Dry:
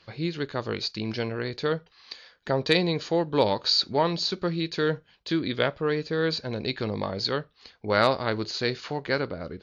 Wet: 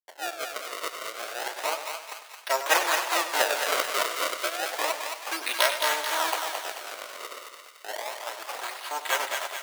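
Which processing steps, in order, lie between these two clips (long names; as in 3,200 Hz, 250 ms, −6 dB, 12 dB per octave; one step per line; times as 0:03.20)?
lower of the sound and its delayed copy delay 3.1 ms
low-pass filter 6,300 Hz 12 dB per octave
high-shelf EQ 4,200 Hz +9 dB
sample-and-hold swept by an LFO 30×, swing 160% 0.31 Hz
dead-zone distortion −47.5 dBFS
0:06.34–0:08.88: downward compressor 6 to 1, threshold −33 dBFS, peak gain reduction 16 dB
high-pass filter 600 Hz 24 dB per octave
feedback echo with a high-pass in the loop 219 ms, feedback 54%, high-pass 900 Hz, level −4.5 dB
feedback echo with a swinging delay time 98 ms, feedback 54%, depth 74 cents, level −11 dB
level +4.5 dB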